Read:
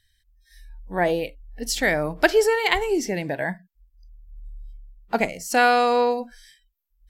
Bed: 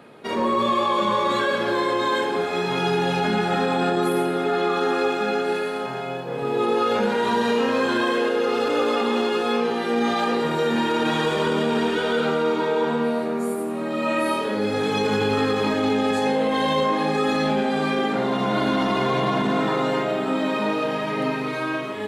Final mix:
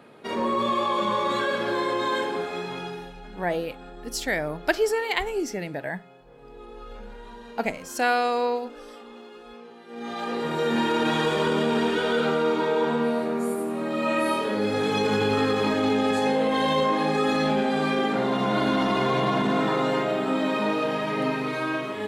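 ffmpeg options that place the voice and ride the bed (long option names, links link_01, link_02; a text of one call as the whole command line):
ffmpeg -i stem1.wav -i stem2.wav -filter_complex "[0:a]adelay=2450,volume=-5dB[link_01];[1:a]volume=17.5dB,afade=type=out:start_time=2.21:duration=0.92:silence=0.112202,afade=type=in:start_time=9.87:duration=0.92:silence=0.0891251[link_02];[link_01][link_02]amix=inputs=2:normalize=0" out.wav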